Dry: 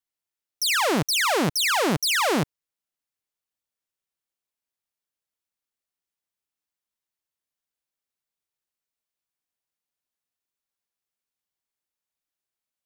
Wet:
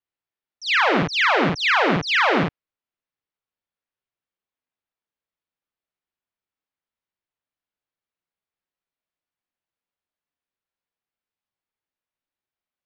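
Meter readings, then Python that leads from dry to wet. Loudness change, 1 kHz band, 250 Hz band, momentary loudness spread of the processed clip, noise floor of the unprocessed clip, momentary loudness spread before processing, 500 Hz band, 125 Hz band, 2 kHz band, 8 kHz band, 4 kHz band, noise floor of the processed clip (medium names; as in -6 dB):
+3.0 dB, +4.5 dB, +2.5 dB, 5 LU, under -85 dBFS, 5 LU, +3.0 dB, +2.5 dB, +6.0 dB, -15.0 dB, 0.0 dB, under -85 dBFS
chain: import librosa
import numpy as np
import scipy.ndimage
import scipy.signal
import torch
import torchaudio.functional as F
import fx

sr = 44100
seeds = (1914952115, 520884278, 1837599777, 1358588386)

y = scipy.ndimage.gaussian_filter1d(x, 2.2, mode='constant')
y = fx.room_early_taps(y, sr, ms=(42, 53), db=(-5.0, -4.0))
y = fx.dynamic_eq(y, sr, hz=2000.0, q=0.73, threshold_db=-36.0, ratio=4.0, max_db=6)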